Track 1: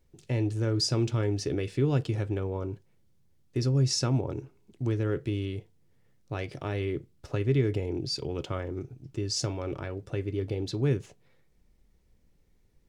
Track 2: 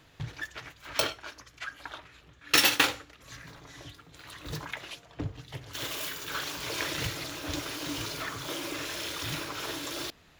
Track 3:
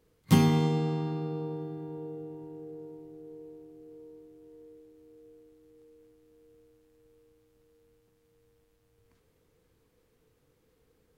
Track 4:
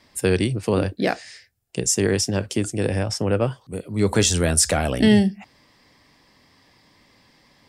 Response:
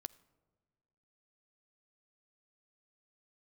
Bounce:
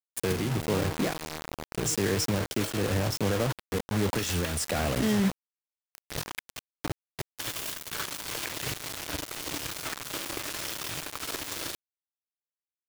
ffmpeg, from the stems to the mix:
-filter_complex "[0:a]lowshelf=f=85:g=6,adelay=1150,volume=-19dB[a];[1:a]bandreject=f=3.9k:w=19,adelay=1650,volume=3dB,asplit=2[b][c];[c]volume=-14dB[d];[2:a]volume=-1dB,asplit=2[e][f];[f]volume=-19.5dB[g];[3:a]highshelf=f=3.5k:g=-6,alimiter=limit=-16.5dB:level=0:latency=1:release=45,volume=-1dB,asplit=2[h][i];[i]apad=whole_len=531283[j];[b][j]sidechaincompress=threshold=-32dB:ratio=8:attack=12:release=390[k];[k][e]amix=inputs=2:normalize=0,acompressor=threshold=-32dB:ratio=20,volume=0dB[l];[4:a]atrim=start_sample=2205[m];[d][g]amix=inputs=2:normalize=0[n];[n][m]afir=irnorm=-1:irlink=0[o];[a][h][l][o]amix=inputs=4:normalize=0,acrusher=bits=4:mix=0:aa=0.000001,alimiter=limit=-19dB:level=0:latency=1:release=420"

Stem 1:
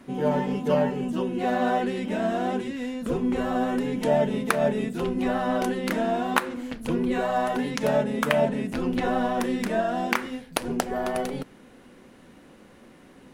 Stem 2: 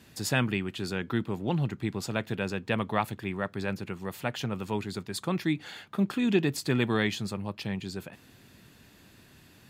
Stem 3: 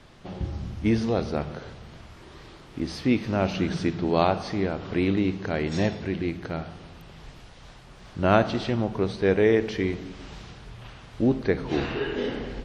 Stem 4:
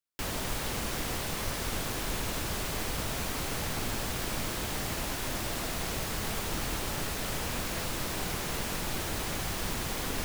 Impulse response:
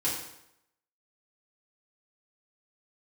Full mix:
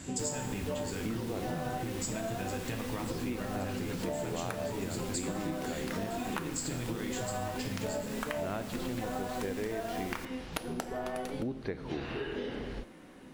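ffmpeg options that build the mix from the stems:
-filter_complex "[0:a]volume=-3.5dB,asplit=2[a][b];[b]volume=-14.5dB[c];[1:a]lowshelf=f=140:g=11,acompressor=threshold=-29dB:ratio=6,lowpass=f=7.5k:t=q:w=12,volume=-1.5dB,asplit=2[d][e];[e]volume=-5.5dB[f];[2:a]adelay=200,volume=-4dB[g];[3:a]volume=-3dB[h];[4:a]atrim=start_sample=2205[i];[c][f]amix=inputs=2:normalize=0[j];[j][i]afir=irnorm=-1:irlink=0[k];[a][d][g][h][k]amix=inputs=5:normalize=0,acompressor=threshold=-33dB:ratio=6"

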